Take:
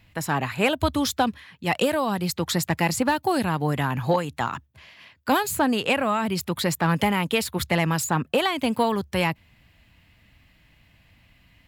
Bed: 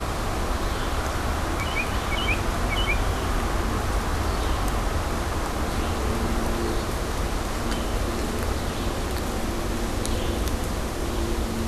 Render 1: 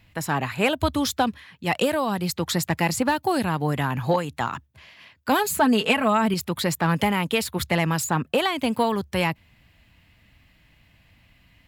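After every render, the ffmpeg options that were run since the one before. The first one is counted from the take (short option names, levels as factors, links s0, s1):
-filter_complex "[0:a]asettb=1/sr,asplit=3[s0][s1][s2];[s0]atrim=end=5.384[s3];[s1]atrim=start=5.38:end=6.34,asetpts=PTS-STARTPTS,afade=t=in:d=0.004:c=qsin,afade=t=out:st=0.956:d=0.004:c=qsin,aecho=1:1:4.6:0.72,atrim=end_sample=42336[s4];[s2]atrim=start=6.336[s5];[s3][s4]acrossfade=d=0.004:c1=hsin:c2=qsin[s6];[s6][s5]acrossfade=d=0.004:c1=qsin:c2=hsin"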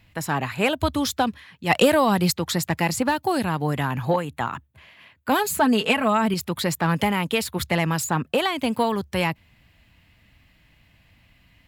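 -filter_complex "[0:a]asplit=3[s0][s1][s2];[s0]afade=t=out:st=1.69:d=0.02[s3];[s1]acontrast=48,afade=t=in:st=1.69:d=0.02,afade=t=out:st=2.31:d=0.02[s4];[s2]afade=t=in:st=2.31:d=0.02[s5];[s3][s4][s5]amix=inputs=3:normalize=0,asettb=1/sr,asplit=3[s6][s7][s8];[s6]atrim=end=4.054[s9];[s7]atrim=start=4.05:end=5.32,asetpts=PTS-STARTPTS,afade=t=in:d=0.004:c=qsin,afade=t=out:st=1.266:d=0.004:c=qsin,equalizer=f=5300:t=o:w=0.77:g=-9.5[s10];[s8]atrim=start=5.316[s11];[s9][s10]acrossfade=d=0.004:c1=hsin:c2=qsin[s12];[s12][s11]acrossfade=d=0.004:c1=qsin:c2=hsin"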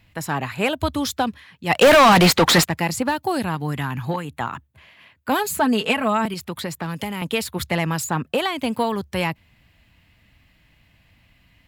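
-filter_complex "[0:a]asplit=3[s0][s1][s2];[s0]afade=t=out:st=1.81:d=0.02[s3];[s1]asplit=2[s4][s5];[s5]highpass=f=720:p=1,volume=39.8,asoftclip=type=tanh:threshold=0.596[s6];[s4][s6]amix=inputs=2:normalize=0,lowpass=f=3400:p=1,volume=0.501,afade=t=in:st=1.81:d=0.02,afade=t=out:st=2.64:d=0.02[s7];[s2]afade=t=in:st=2.64:d=0.02[s8];[s3][s7][s8]amix=inputs=3:normalize=0,asettb=1/sr,asplit=3[s9][s10][s11];[s9]atrim=end=3.554[s12];[s10]atrim=start=3.55:end=4.25,asetpts=PTS-STARTPTS,afade=t=in:d=0.004:c=qsin,afade=t=out:st=0.696:d=0.004:c=qsin,equalizer=f=580:t=o:w=0.96:g=-8[s13];[s11]atrim=start=4.246[s14];[s12][s13]acrossfade=d=0.004:c1=hsin:c2=qsin[s15];[s15][s14]acrossfade=d=0.004:c1=qsin:c2=hsin,asettb=1/sr,asplit=3[s16][s17][s18];[s16]atrim=end=6.254[s19];[s17]atrim=start=6.25:end=7.22,asetpts=PTS-STARTPTS,afade=t=in:d=0.004:c=qsin,afade=t=out:st=0.966:d=0.004:c=qsin,acrossover=split=480|3100[s20][s21][s22];[s20]acompressor=threshold=0.0398:ratio=4[s23];[s21]acompressor=threshold=0.0251:ratio=4[s24];[s22]acompressor=threshold=0.0178:ratio=4[s25];[s23][s24][s25]amix=inputs=3:normalize=0[s26];[s18]atrim=start=7.216[s27];[s19][s26]acrossfade=d=0.004:c1=hsin:c2=qsin[s28];[s28][s27]acrossfade=d=0.004:c1=qsin:c2=hsin"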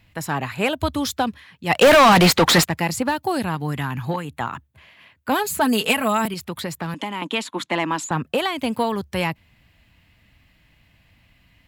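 -filter_complex "[0:a]asettb=1/sr,asplit=3[s0][s1][s2];[s0]atrim=end=5.614[s3];[s1]atrim=start=5.61:end=6.28,asetpts=PTS-STARTPTS,afade=t=in:d=0.004:c=qsin,afade=t=out:st=0.666:d=0.004:c=qsin,aemphasis=mode=production:type=50fm[s4];[s2]atrim=start=6.276[s5];[s3][s4]acrossfade=d=0.004:c1=hsin:c2=qsin[s6];[s6][s5]acrossfade=d=0.004:c1=qsin:c2=hsin,asettb=1/sr,asplit=3[s7][s8][s9];[s7]atrim=end=6.944[s10];[s8]atrim=start=6.94:end=8.11,asetpts=PTS-STARTPTS,afade=t=in:d=0.004:c=qsin,afade=t=out:st=1.166:d=0.004:c=qsin,highpass=f=220:w=0.5412,highpass=f=220:w=1.3066,equalizer=f=300:t=q:w=4:g=9,equalizer=f=450:t=q:w=4:g=-6,equalizer=f=1000:t=q:w=4:g=8,equalizer=f=3300:t=q:w=4:g=3,equalizer=f=5000:t=q:w=4:g=-7,equalizer=f=9100:t=q:w=4:g=-8,lowpass=f=9300:w=0.5412,lowpass=f=9300:w=1.3066[s11];[s9]atrim=start=8.106[s12];[s10][s11]acrossfade=d=0.004:c1=hsin:c2=qsin[s13];[s13][s12]acrossfade=d=0.004:c1=qsin:c2=hsin"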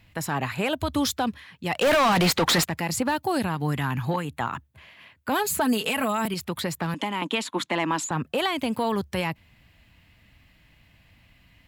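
-af "acompressor=threshold=0.141:ratio=3,alimiter=limit=0.178:level=0:latency=1:release=72"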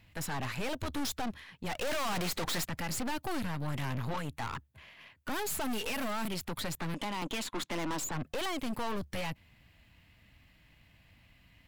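-af "aeval=exprs='(tanh(44.7*val(0)+0.75)-tanh(0.75))/44.7':c=same"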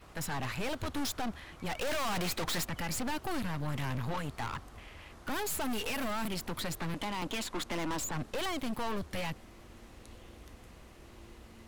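-filter_complex "[1:a]volume=0.0473[s0];[0:a][s0]amix=inputs=2:normalize=0"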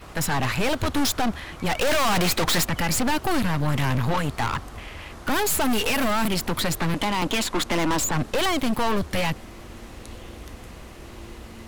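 -af "volume=3.98"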